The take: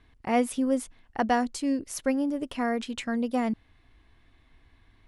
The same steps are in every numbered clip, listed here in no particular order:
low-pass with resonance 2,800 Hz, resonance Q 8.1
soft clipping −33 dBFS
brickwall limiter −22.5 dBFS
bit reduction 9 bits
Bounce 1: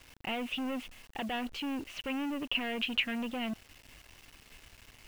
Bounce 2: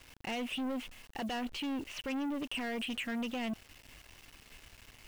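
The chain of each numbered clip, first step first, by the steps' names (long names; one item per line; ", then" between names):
brickwall limiter, then soft clipping, then low-pass with resonance, then bit reduction
low-pass with resonance, then brickwall limiter, then bit reduction, then soft clipping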